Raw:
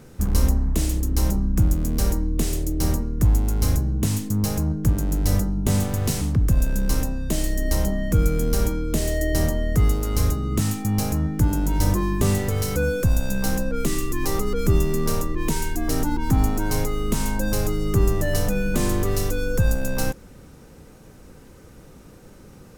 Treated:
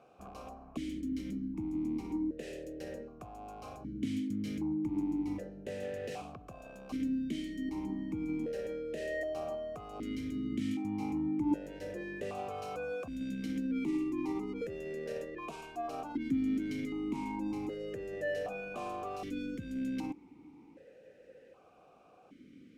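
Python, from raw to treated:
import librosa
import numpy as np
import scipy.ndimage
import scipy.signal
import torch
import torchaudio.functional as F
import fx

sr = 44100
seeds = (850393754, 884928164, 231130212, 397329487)

p1 = fx.over_compress(x, sr, threshold_db=-23.0, ratio=-1.0)
p2 = x + (p1 * librosa.db_to_amplitude(0.5))
p3 = fx.vowel_held(p2, sr, hz=1.3)
y = p3 * librosa.db_to_amplitude(-5.0)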